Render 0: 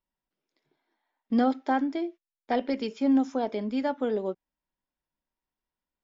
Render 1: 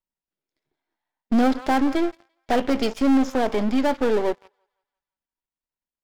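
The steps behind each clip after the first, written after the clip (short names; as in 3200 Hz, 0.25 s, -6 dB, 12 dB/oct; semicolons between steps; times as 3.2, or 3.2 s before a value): half-wave gain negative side -12 dB; thinning echo 0.17 s, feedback 53%, high-pass 780 Hz, level -19 dB; sample leveller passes 3; gain +2.5 dB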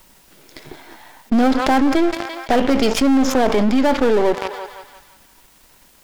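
fast leveller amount 70%; gain +2.5 dB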